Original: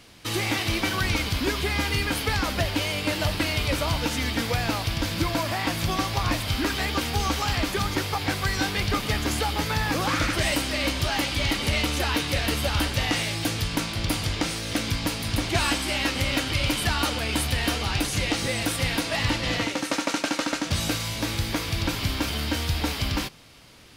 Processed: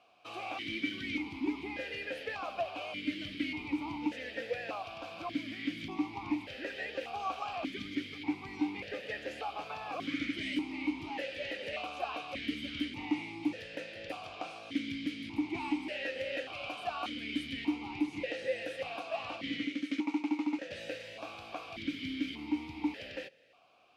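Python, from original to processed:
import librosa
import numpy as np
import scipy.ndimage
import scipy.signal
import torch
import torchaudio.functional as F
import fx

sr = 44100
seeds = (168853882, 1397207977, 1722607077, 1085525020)

y = fx.vowel_held(x, sr, hz=1.7)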